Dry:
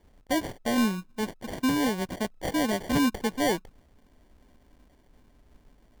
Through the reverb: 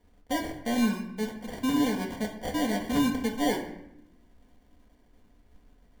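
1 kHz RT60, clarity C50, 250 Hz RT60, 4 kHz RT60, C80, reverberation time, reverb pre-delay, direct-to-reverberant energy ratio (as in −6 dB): 0.75 s, 7.5 dB, 1.2 s, 0.55 s, 10.5 dB, 0.80 s, 4 ms, 0.5 dB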